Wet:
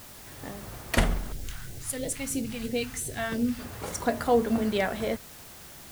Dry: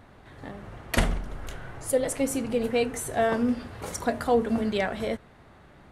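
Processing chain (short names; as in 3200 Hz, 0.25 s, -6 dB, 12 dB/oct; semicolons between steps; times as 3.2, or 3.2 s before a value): added noise white -48 dBFS; 1.32–3.59 phaser stages 2, 3 Hz, lowest notch 410–1200 Hz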